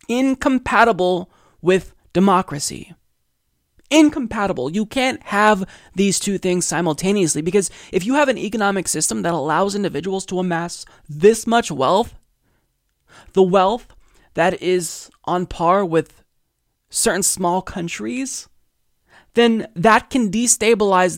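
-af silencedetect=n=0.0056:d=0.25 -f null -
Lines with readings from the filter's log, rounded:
silence_start: 2.95
silence_end: 3.78 | silence_duration: 0.83
silence_start: 12.23
silence_end: 13.10 | silence_duration: 0.87
silence_start: 16.20
silence_end: 16.92 | silence_duration: 0.71
silence_start: 18.46
silence_end: 19.10 | silence_duration: 0.64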